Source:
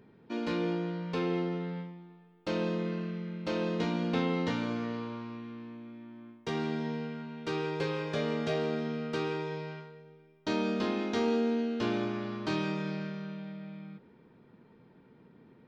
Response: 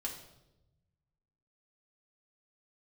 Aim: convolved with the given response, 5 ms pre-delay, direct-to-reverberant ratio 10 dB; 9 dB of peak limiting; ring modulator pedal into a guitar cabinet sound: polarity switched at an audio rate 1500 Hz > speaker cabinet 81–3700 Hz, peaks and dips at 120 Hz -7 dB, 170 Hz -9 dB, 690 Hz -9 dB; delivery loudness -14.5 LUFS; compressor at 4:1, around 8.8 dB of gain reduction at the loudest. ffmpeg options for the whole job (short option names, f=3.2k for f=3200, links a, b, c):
-filter_complex "[0:a]acompressor=threshold=-36dB:ratio=4,alimiter=level_in=9dB:limit=-24dB:level=0:latency=1,volume=-9dB,asplit=2[a][b];[1:a]atrim=start_sample=2205,adelay=5[c];[b][c]afir=irnorm=-1:irlink=0,volume=-10dB[d];[a][d]amix=inputs=2:normalize=0,aeval=exprs='val(0)*sgn(sin(2*PI*1500*n/s))':c=same,highpass=81,equalizer=f=120:t=q:w=4:g=-7,equalizer=f=170:t=q:w=4:g=-9,equalizer=f=690:t=q:w=4:g=-9,lowpass=f=3.7k:w=0.5412,lowpass=f=3.7k:w=1.3066,volume=25.5dB"